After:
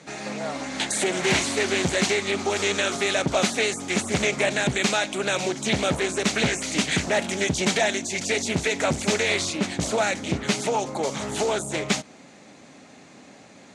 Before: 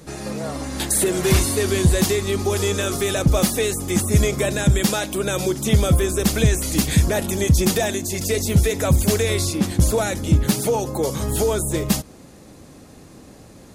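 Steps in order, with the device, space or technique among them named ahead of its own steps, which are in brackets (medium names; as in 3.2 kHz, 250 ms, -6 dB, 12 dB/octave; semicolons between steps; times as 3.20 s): full-range speaker at full volume (loudspeaker Doppler distortion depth 0.91 ms; cabinet simulation 270–7300 Hz, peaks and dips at 340 Hz -8 dB, 480 Hz -7 dB, 1.1 kHz -4 dB, 2.2 kHz +5 dB, 5.1 kHz -5 dB); trim +2 dB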